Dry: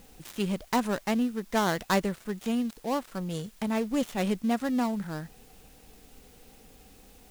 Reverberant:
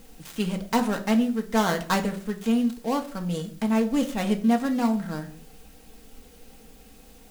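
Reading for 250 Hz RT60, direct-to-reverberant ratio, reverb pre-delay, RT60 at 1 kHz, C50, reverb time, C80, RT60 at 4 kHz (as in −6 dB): 0.60 s, 3.0 dB, 4 ms, 0.45 s, 13.5 dB, 0.50 s, 17.5 dB, 0.35 s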